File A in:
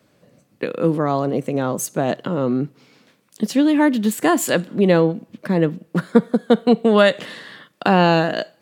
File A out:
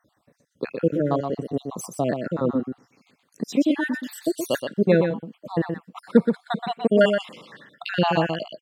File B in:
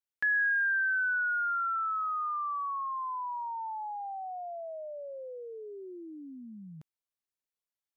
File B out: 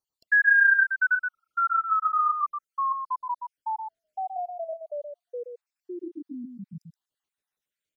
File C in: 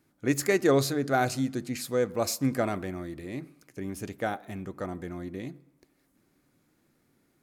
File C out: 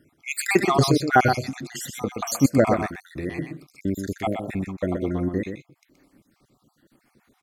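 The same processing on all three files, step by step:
time-frequency cells dropped at random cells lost 63%
high-shelf EQ 6,400 Hz −6 dB
on a send: single-tap delay 124 ms −6.5 dB
on the sum: loudness normalisation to −24 LKFS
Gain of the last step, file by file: −2.0, +9.5, +11.5 decibels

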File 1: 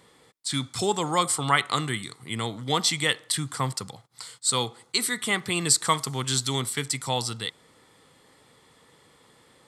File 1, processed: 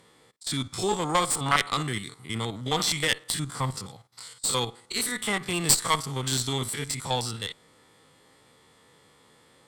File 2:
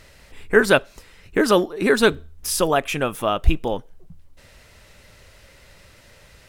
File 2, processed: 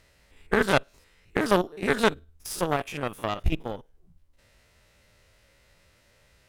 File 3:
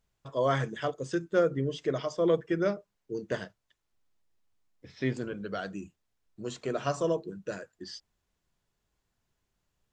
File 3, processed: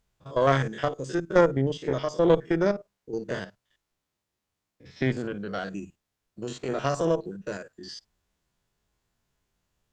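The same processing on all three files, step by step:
spectrum averaged block by block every 50 ms
harmonic generator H 4 −14 dB, 7 −23 dB, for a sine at −2 dBFS
loudness normalisation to −27 LKFS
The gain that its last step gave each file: +6.0, −4.5, +10.5 decibels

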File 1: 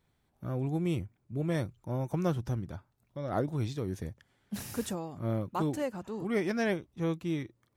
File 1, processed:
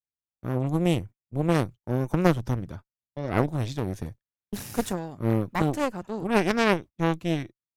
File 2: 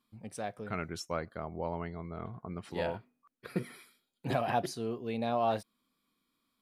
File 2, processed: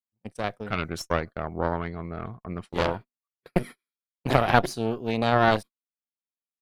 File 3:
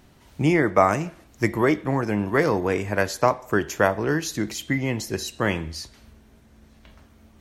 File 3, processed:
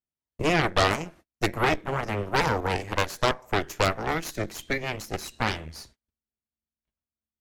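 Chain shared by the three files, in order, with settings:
noise gate −43 dBFS, range −38 dB
harmonic generator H 8 −7 dB, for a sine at −3 dBFS
loudness normalisation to −27 LKFS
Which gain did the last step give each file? +3.0, +5.5, −8.0 decibels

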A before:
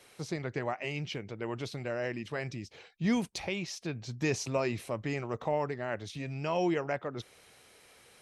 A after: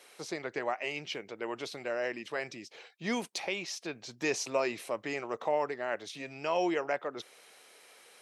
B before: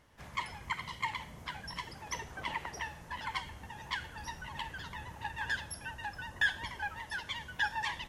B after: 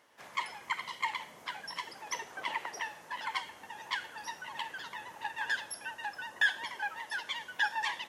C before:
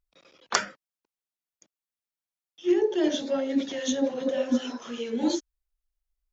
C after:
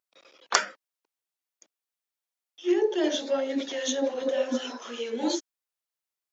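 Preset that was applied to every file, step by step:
high-pass filter 370 Hz 12 dB per octave
level +2 dB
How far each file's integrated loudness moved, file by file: −0.5, +2.0, −0.5 LU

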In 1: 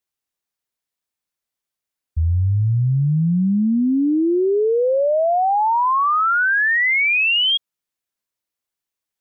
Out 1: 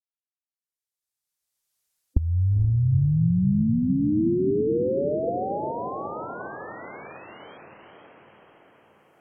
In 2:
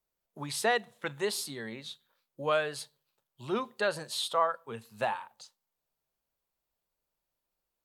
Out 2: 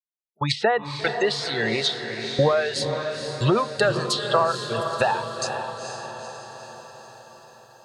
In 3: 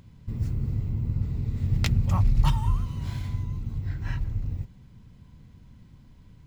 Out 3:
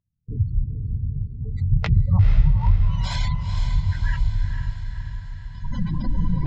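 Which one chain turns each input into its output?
camcorder AGC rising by 17 dB per second
noise reduction from a noise print of the clip's start 13 dB
bass and treble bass +2 dB, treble +9 dB
noise gate −37 dBFS, range −28 dB
treble cut that deepens with the level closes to 2,700 Hz, closed at −16 dBFS
gate on every frequency bin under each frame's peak −25 dB strong
parametric band 260 Hz −8 dB 0.66 octaves
treble cut that deepens with the level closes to 340 Hz, closed at −17.5 dBFS
downward compressor 3 to 1, threshold −22 dBFS
feedback delay with all-pass diffusion 474 ms, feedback 59%, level −7 dB
loudness normalisation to −24 LKFS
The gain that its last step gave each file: +0.5, +8.0, +8.5 decibels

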